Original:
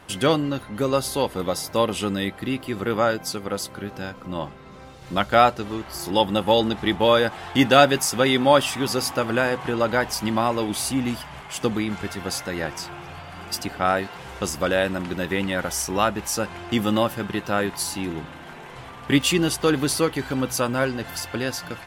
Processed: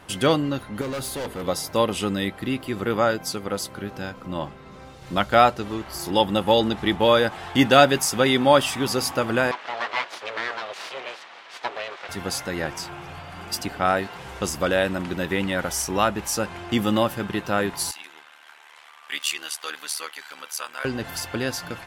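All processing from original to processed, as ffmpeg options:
-filter_complex "[0:a]asettb=1/sr,asplit=3[a][b][c];[a]atrim=end=0.814[d];[b]atrim=start=0.81:end=1.48,asetpts=PTS-STARTPTS,afade=t=in:d=0.004:c=qsin,afade=t=out:st=0.666:d=0.004:c=qsin,equalizer=f=5.4k:t=o:w=0.38:g=-6,bandreject=f=50:t=h:w=6,bandreject=f=100:t=h:w=6,bandreject=f=150:t=h:w=6,bandreject=f=200:t=h:w=6,bandreject=f=250:t=h:w=6,bandreject=f=300:t=h:w=6,bandreject=f=350:t=h:w=6,bandreject=f=400:t=h:w=6,bandreject=f=450:t=h:w=6,asoftclip=type=hard:threshold=-27dB[e];[c]atrim=start=1.476[f];[d][e]acrossfade=d=0.004:c1=hsin:c2=qsin[g];[g][f]acrossfade=d=0.004:c1=qsin:c2=hsin,asettb=1/sr,asplit=3[h][i][j];[h]atrim=end=9.514[k];[i]atrim=start=9.51:end=12.09,asetpts=PTS-STARTPTS,afade=t=in:d=0.004:c=qsin,afade=t=out:st=2.576:d=0.004:c=qsin,aecho=1:1:6:0.38,atrim=end_sample=113778,aeval=exprs='abs(val(0))':c=same,highpass=590,lowpass=4.2k[l];[j]atrim=start=12.086[m];[k][l]acrossfade=d=0.004:c1=hsin:c2=qsin[n];[n][m]acrossfade=d=0.004:c1=qsin:c2=hsin,asettb=1/sr,asplit=3[o][p][q];[o]atrim=end=17.914[r];[p]atrim=start=17.91:end=20.85,asetpts=PTS-STARTPTS,afade=t=in:d=0.004:c=qsin,afade=t=out:st=2.936:d=0.004:c=qsin,highpass=1.3k,tremolo=f=75:d=0.824[s];[q]atrim=start=20.846[t];[r][s]acrossfade=d=0.004:c1=hsin:c2=qsin[u];[u][t]acrossfade=d=0.004:c1=qsin:c2=hsin"

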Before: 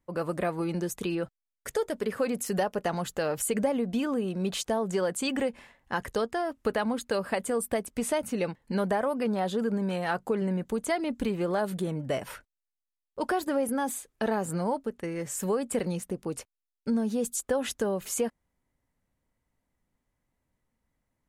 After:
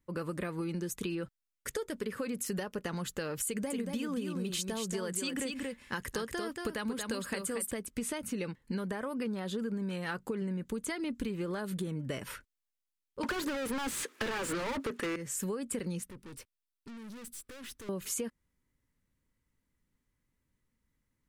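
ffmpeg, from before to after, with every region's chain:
-filter_complex "[0:a]asettb=1/sr,asplit=3[a][b][c];[a]atrim=end=3.474[d];[b]atrim=start=3.47:end=7.71,asetpts=PTS-STARTPTS,afade=t=in:d=0.004:c=qsin,afade=t=out:st=4.236:d=0.004:c=qsin,highshelf=f=3.9k:g=6.5,aecho=1:1:231:0.501,atrim=end_sample=186984[e];[c]atrim=start=7.706[f];[d][e]acrossfade=d=0.004:c1=hsin:c2=qsin[g];[g][f]acrossfade=d=0.004:c1=qsin:c2=hsin,asettb=1/sr,asplit=3[h][i][j];[h]atrim=end=13.234[k];[i]atrim=start=13.23:end=15.16,asetpts=PTS-STARTPTS,afade=t=in:d=0.004:c=qsin,afade=t=out:st=1.926:d=0.004:c=qsin,highpass=f=220:w=0.5412,highpass=f=220:w=1.3066,asplit=2[l][m];[m]highpass=f=720:p=1,volume=36dB,asoftclip=type=tanh:threshold=-16dB[n];[l][n]amix=inputs=2:normalize=0,lowpass=f=2.3k:p=1,volume=-6dB[o];[j]atrim=start=15.156[p];[k][o]acrossfade=d=0.004:c1=hsin:c2=qsin[q];[q][p]acrossfade=d=0.004:c1=qsin:c2=hsin,asettb=1/sr,asplit=3[r][s][t];[r]atrim=end=16.094[u];[s]atrim=start=16.09:end=17.89,asetpts=PTS-STARTPTS,afade=t=in:d=0.004:c=qsin,afade=t=out:st=1.796:d=0.004:c=qsin,bandreject=f=6.8k:w=6.3,aeval=exprs='(tanh(158*val(0)+0.35)-tanh(0.35))/158':c=same[v];[t]atrim=start=17.886[w];[u][v]acrossfade=d=0.004:c1=hsin:c2=qsin[x];[x][w]acrossfade=d=0.004:c1=qsin:c2=hsin,equalizer=f=710:t=o:w=0.74:g=-13,acompressor=threshold=-32dB:ratio=6"

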